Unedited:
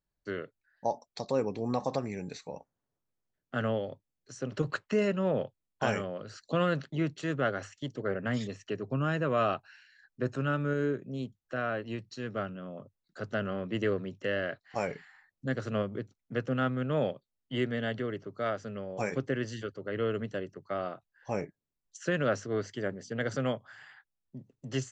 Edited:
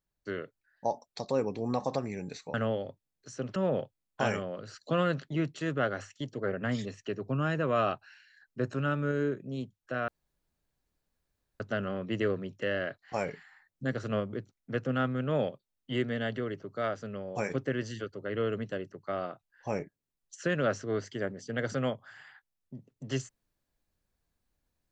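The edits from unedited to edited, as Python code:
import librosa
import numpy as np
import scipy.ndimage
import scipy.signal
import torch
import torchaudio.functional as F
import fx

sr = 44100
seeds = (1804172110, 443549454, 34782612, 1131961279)

y = fx.edit(x, sr, fx.cut(start_s=2.54, length_s=1.03),
    fx.cut(start_s=4.59, length_s=0.59),
    fx.room_tone_fill(start_s=11.7, length_s=1.52), tone=tone)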